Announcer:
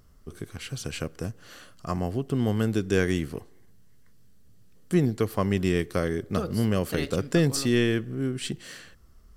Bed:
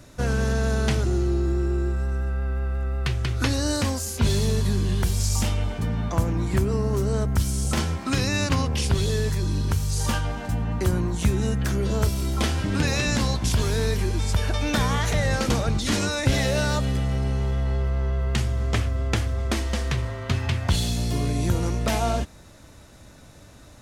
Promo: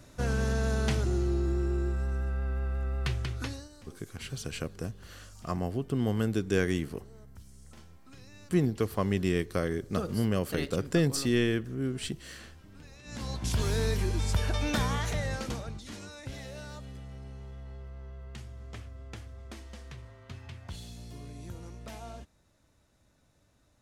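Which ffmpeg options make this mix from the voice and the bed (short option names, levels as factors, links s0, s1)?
-filter_complex "[0:a]adelay=3600,volume=0.668[s0];[1:a]volume=8.41,afade=t=out:st=3.1:d=0.59:silence=0.0668344,afade=t=in:st=13.03:d=0.66:silence=0.0630957,afade=t=out:st=14.62:d=1.23:silence=0.177828[s1];[s0][s1]amix=inputs=2:normalize=0"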